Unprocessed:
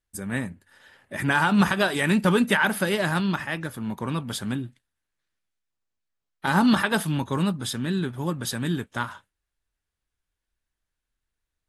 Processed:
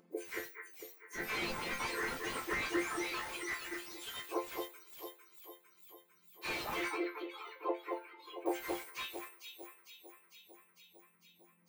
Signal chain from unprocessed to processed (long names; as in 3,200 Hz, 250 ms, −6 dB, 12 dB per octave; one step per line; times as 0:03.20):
frequency axis turned over on the octave scale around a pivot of 1,900 Hz
0:01.14–0:02.14: wind on the microphone 490 Hz −31 dBFS
delay that swaps between a low-pass and a high-pass 226 ms, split 2,300 Hz, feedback 67%, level −3.5 dB
on a send at −22 dB: convolution reverb RT60 2.2 s, pre-delay 50 ms
on the sum: dynamic equaliser 1,700 Hz, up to +4 dB, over −43 dBFS, Q 1.7
reverb reduction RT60 1.6 s
0:06.90–0:08.46: high-frequency loss of the air 410 metres
resonators tuned to a chord F3 major, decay 0.25 s
upward compression, threshold −59 dBFS
slew-rate limiting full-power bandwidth 14 Hz
level +8.5 dB